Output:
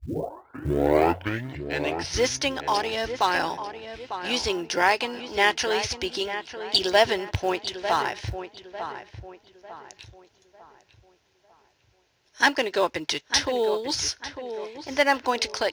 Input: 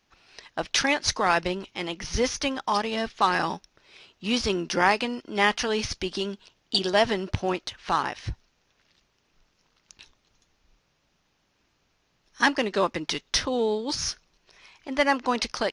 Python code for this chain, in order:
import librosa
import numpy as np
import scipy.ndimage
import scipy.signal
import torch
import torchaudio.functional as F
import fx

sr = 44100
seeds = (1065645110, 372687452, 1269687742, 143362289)

p1 = fx.tape_start_head(x, sr, length_s=2.19)
p2 = scipy.signal.sosfilt(scipy.signal.butter(4, 61.0, 'highpass', fs=sr, output='sos'), p1)
p3 = fx.peak_eq(p2, sr, hz=200.0, db=-14.5, octaves=0.65)
p4 = fx.notch(p3, sr, hz=1200.0, q=5.5)
p5 = fx.rider(p4, sr, range_db=4, speed_s=2.0)
p6 = p4 + F.gain(torch.from_numpy(p5), 0.0).numpy()
p7 = fx.quant_float(p6, sr, bits=4)
p8 = p7 + fx.echo_filtered(p7, sr, ms=899, feedback_pct=39, hz=2400.0, wet_db=-9.5, dry=0)
y = F.gain(torch.from_numpy(p8), -4.0).numpy()